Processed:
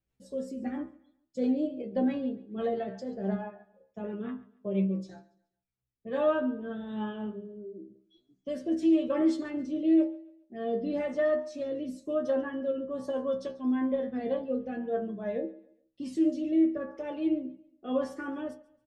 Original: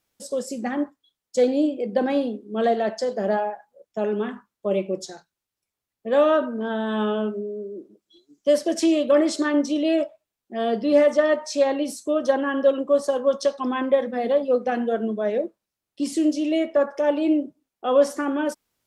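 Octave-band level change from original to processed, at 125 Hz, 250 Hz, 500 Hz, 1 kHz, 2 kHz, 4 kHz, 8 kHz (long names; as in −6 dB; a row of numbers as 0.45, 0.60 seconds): can't be measured, −5.0 dB, −11.0 dB, −13.0 dB, −12.0 dB, −16.0 dB, below −20 dB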